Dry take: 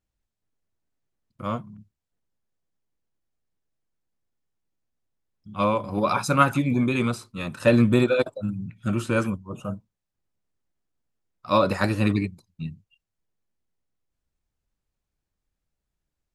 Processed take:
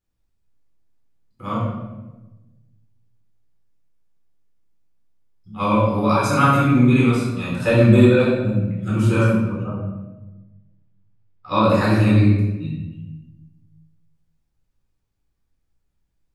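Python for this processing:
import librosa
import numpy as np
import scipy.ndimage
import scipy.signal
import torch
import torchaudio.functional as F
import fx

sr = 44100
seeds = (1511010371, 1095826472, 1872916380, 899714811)

y = fx.lowpass(x, sr, hz=fx.line((9.33, 1800.0), (11.61, 4200.0)), slope=12, at=(9.33, 11.61), fade=0.02)
y = fx.room_shoebox(y, sr, seeds[0], volume_m3=560.0, walls='mixed', distance_m=4.0)
y = y * librosa.db_to_amplitude(-5.0)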